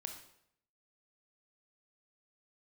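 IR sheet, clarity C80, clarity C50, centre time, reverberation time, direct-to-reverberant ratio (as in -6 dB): 10.0 dB, 7.0 dB, 21 ms, 0.70 s, 4.5 dB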